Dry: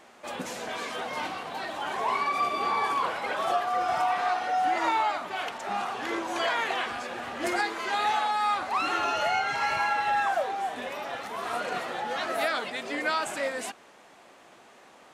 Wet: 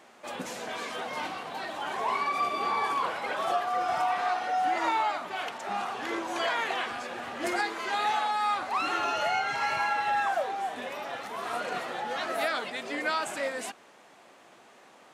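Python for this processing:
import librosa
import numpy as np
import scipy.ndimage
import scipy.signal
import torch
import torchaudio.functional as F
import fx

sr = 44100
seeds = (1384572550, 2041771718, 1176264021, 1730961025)

y = scipy.signal.sosfilt(scipy.signal.butter(2, 84.0, 'highpass', fs=sr, output='sos'), x)
y = y * librosa.db_to_amplitude(-1.5)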